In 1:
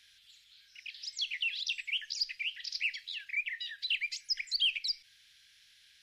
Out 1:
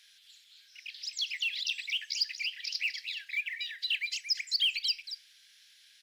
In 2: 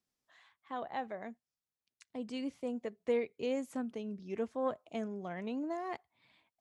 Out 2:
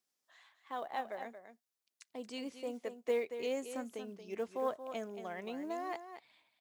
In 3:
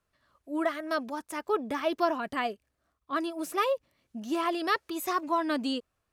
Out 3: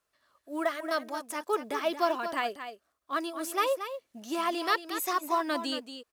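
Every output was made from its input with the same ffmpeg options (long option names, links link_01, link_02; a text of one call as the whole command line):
ffmpeg -i in.wav -af "bass=frequency=250:gain=-13,treble=frequency=4000:gain=4,aecho=1:1:229:0.316,acrusher=bits=8:mode=log:mix=0:aa=0.000001" out.wav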